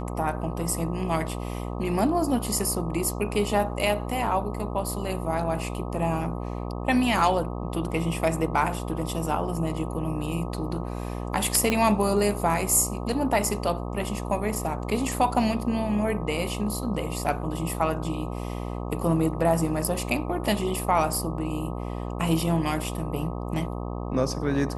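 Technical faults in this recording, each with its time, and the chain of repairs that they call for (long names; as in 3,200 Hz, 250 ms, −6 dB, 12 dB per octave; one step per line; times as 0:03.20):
mains buzz 60 Hz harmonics 21 −32 dBFS
0:11.70: click −10 dBFS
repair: click removal
hum removal 60 Hz, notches 21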